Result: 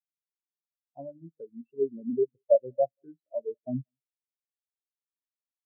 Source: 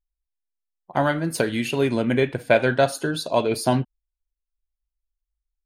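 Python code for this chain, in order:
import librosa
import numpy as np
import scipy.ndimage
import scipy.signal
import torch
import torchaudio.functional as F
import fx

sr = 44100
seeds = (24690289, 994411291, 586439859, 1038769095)

p1 = fx.env_lowpass_down(x, sr, base_hz=810.0, full_db=-16.0)
p2 = p1 + fx.echo_single(p1, sr, ms=186, db=-15.0, dry=0)
p3 = fx.spectral_expand(p2, sr, expansion=4.0)
y = F.gain(torch.from_numpy(p3), -3.5).numpy()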